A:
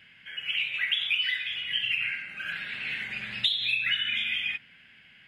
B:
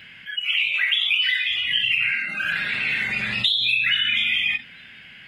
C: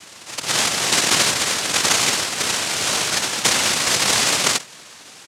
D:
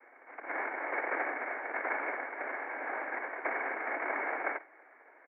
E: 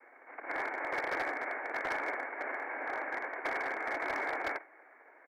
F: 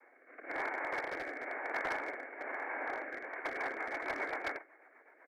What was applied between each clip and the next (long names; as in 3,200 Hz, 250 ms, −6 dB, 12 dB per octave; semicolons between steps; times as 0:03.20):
noise reduction from a noise print of the clip's start 20 dB; envelope flattener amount 50%; level +4 dB
comb filter 3.3 ms, depth 60%; cochlear-implant simulation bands 1; level +1.5 dB
Chebyshev low-pass with heavy ripple 2,100 Hz, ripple 6 dB; frequency shifter +170 Hz; level −7.5 dB
gain into a clipping stage and back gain 28.5 dB
rotating-speaker cabinet horn 1 Hz, later 8 Hz, at 0:03.08